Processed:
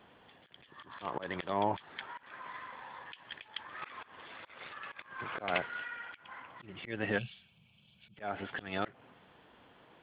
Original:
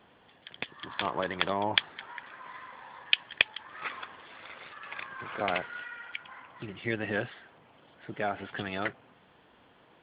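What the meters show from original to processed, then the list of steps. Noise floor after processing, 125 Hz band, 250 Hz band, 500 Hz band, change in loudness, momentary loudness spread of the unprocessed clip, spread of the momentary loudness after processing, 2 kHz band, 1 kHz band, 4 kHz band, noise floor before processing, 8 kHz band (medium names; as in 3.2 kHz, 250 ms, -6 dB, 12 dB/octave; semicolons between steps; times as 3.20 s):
-65 dBFS, -3.0 dB, -3.5 dB, -3.5 dB, -7.0 dB, 18 LU, 16 LU, -7.0 dB, -3.0 dB, -13.5 dB, -61 dBFS, no reading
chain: slow attack 178 ms; time-frequency box 7.18–8.18 s, 220–2200 Hz -21 dB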